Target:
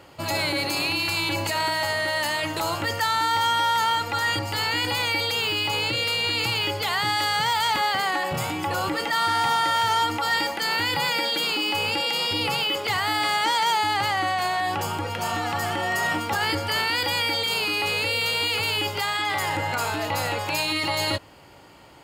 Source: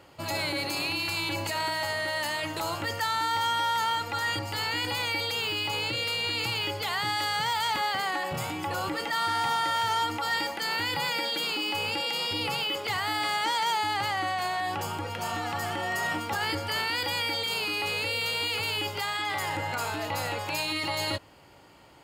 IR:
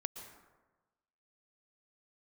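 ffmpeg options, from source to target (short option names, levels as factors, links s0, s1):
-af "acontrast=27"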